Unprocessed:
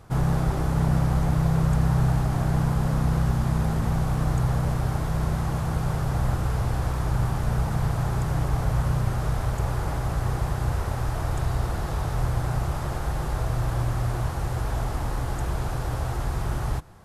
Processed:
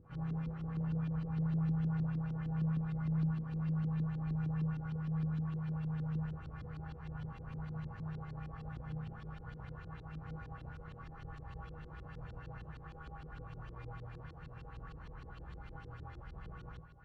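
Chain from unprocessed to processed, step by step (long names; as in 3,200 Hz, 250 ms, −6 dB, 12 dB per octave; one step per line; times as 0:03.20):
lower of the sound and its delayed copy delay 0.7 ms
upward compression, threshold −28 dBFS
tuned comb filter 160 Hz, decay 0.46 s, harmonics odd, mix 90%
feedback delay with all-pass diffusion 1,698 ms, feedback 47%, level −15 dB
on a send at −8 dB: convolution reverb RT60 1.2 s, pre-delay 51 ms
on the sum: auto-filter low-pass saw up 6.5 Hz 290–4,200 Hz
level −6.5 dB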